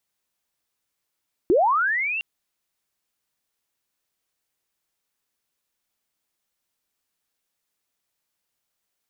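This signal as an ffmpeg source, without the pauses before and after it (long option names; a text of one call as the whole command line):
ffmpeg -f lavfi -i "aevalsrc='pow(10,(-13.5-11*t/0.71)/20)*sin(2*PI*(310*t+2490*t*t/(2*0.71)))':duration=0.71:sample_rate=44100" out.wav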